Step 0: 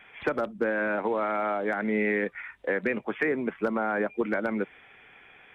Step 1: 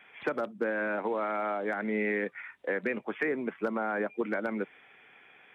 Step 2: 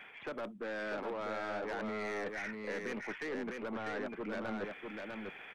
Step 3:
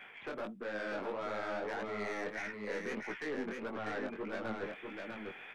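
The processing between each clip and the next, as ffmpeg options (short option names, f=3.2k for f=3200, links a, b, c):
-af "highpass=150,volume=-3.5dB"
-af "areverse,acompressor=threshold=-39dB:ratio=5,areverse,aeval=exprs='(tanh(112*val(0)+0.15)-tanh(0.15))/112':c=same,aecho=1:1:648:0.631,volume=5.5dB"
-af "flanger=delay=16:depth=6.9:speed=1.6,volume=3dB"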